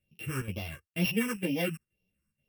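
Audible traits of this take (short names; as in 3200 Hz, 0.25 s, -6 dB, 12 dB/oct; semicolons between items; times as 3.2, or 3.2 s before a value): a buzz of ramps at a fixed pitch in blocks of 16 samples; phasing stages 4, 2.1 Hz, lowest notch 630–1400 Hz; chopped level 2.1 Hz, depth 65%, duty 85%; a shimmering, thickened sound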